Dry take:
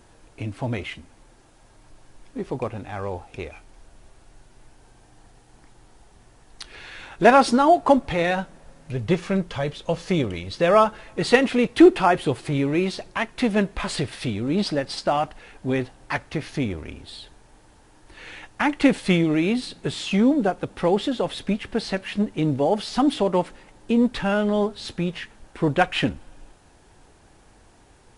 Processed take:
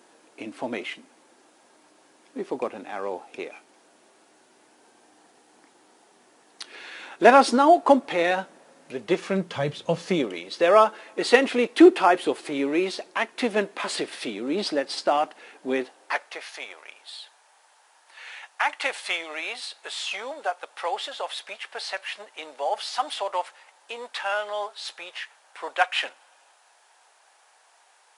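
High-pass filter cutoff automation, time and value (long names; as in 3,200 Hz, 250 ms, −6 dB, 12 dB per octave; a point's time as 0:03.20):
high-pass filter 24 dB per octave
0:09.24 250 Hz
0:09.78 100 Hz
0:10.31 280 Hz
0:15.76 280 Hz
0:16.49 680 Hz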